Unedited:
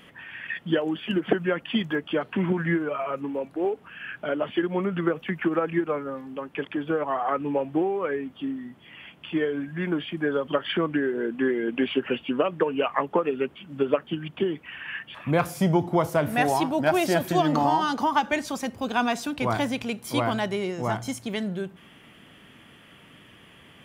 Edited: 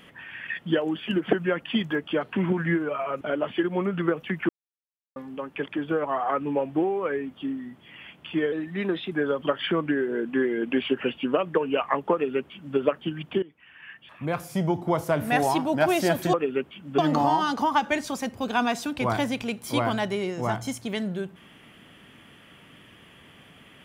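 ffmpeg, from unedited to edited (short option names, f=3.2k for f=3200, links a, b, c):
-filter_complex "[0:a]asplit=9[a][b][c][d][e][f][g][h][i];[a]atrim=end=3.212[j];[b]atrim=start=4.198:end=5.48,asetpts=PTS-STARTPTS,afade=t=out:st=1.278:d=0.004:c=hsin[k];[c]atrim=start=5.48:end=6.15,asetpts=PTS-STARTPTS,volume=0[l];[d]atrim=start=6.15:end=9.514,asetpts=PTS-STARTPTS,afade=t=in:d=0.004:c=hsin[m];[e]atrim=start=9.51:end=10.18,asetpts=PTS-STARTPTS,asetrate=48951,aresample=44100[n];[f]atrim=start=10.176:end=14.48,asetpts=PTS-STARTPTS,afade=t=out:st=4.3:d=0.004:c=hsin:silence=0.105925[o];[g]atrim=start=14.48:end=17.392,asetpts=PTS-STARTPTS,afade=t=in:d=1.96:silence=0.105925[p];[h]atrim=start=13.178:end=13.832[q];[i]atrim=start=17.388[r];[k][l][m]concat=n=3:v=0:a=1[s];[j][s]acrossfade=d=0.004:c1=hsin:c2=hsin[t];[t][n]acrossfade=d=0.004:c1=hsin:c2=hsin[u];[o][p]concat=n=2:v=0:a=1[v];[u][v]acrossfade=d=0.004:c1=hsin:c2=hsin[w];[w][q]acrossfade=d=0.004:c1=hsin:c2=hsin[x];[x][r]acrossfade=d=0.004:c1=hsin:c2=hsin"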